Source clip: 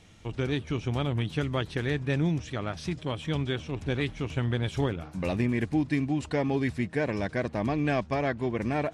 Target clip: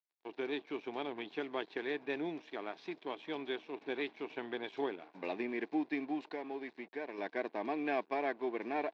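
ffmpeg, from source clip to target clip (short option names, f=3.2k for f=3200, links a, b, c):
-filter_complex "[0:a]asettb=1/sr,asplit=3[a][b][c];[a]atrim=end=6.254[d];[b]atrim=start=6.25:end=7.18,asetpts=PTS-STARTPTS,afade=t=in:d=0.004:c=qsin,afade=t=out:st=0.926:d=0.004:c=qsin,acompressor=threshold=-34dB:ratio=2[e];[c]atrim=start=7.176[f];[d][e]acrossfade=d=0.004:c1=hsin:c2=qsin[g];[g][f]acrossfade=d=0.004:c1=qsin:c2=hsin,aeval=exprs='sgn(val(0))*max(abs(val(0))-0.00473,0)':c=same,highpass=f=340:w=0.5412,highpass=f=340:w=1.3066,equalizer=f=540:t=q:w=4:g=-9,equalizer=f=1.3k:t=q:w=4:g=-10,equalizer=f=1.9k:t=q:w=4:g=-4,equalizer=f=3k:t=q:w=4:g=-8,lowpass=f=3.6k:w=0.5412,lowpass=f=3.6k:w=1.3066,volume=-1.5dB"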